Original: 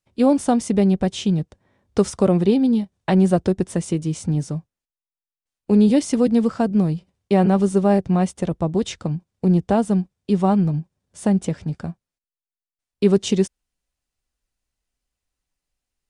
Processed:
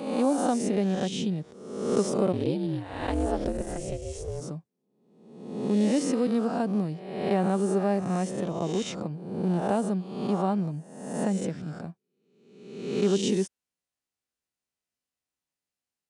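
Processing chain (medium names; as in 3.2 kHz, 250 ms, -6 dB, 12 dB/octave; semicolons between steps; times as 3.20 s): reverse spectral sustain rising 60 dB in 0.98 s; high-pass 150 Hz 12 dB/octave; 2.32–4.40 s: ring modulator 63 Hz -> 280 Hz; trim -9 dB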